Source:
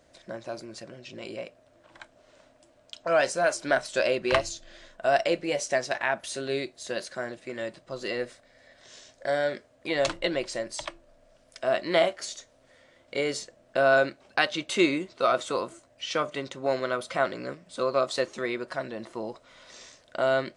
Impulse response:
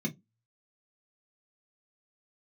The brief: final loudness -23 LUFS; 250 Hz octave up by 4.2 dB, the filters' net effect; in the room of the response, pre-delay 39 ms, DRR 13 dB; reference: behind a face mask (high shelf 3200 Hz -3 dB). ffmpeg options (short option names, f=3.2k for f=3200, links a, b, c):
-filter_complex "[0:a]equalizer=f=250:t=o:g=6,asplit=2[a][b];[1:a]atrim=start_sample=2205,adelay=39[c];[b][c]afir=irnorm=-1:irlink=0,volume=-16dB[d];[a][d]amix=inputs=2:normalize=0,highshelf=f=3.2k:g=-3,volume=4dB"